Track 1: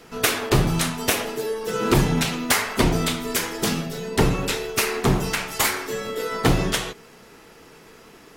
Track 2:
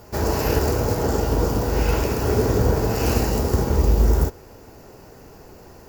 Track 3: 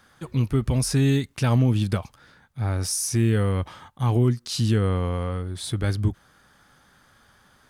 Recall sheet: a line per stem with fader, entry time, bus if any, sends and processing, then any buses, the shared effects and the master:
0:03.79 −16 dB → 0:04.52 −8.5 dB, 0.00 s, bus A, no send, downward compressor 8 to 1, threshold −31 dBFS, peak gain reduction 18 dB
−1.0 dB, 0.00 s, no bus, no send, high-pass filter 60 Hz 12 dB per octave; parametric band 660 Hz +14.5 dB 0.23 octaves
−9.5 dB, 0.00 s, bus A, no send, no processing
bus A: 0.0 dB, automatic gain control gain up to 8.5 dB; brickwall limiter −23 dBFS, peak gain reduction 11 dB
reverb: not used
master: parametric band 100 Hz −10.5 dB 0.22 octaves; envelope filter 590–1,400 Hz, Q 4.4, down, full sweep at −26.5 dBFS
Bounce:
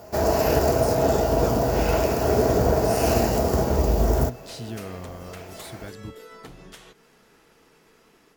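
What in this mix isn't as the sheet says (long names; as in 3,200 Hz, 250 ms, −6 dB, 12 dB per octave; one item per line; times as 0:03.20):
stem 1 −16.0 dB → −26.0 dB
stem 3 −9.5 dB → −20.0 dB
master: missing envelope filter 590–1,400 Hz, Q 4.4, down, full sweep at −26.5 dBFS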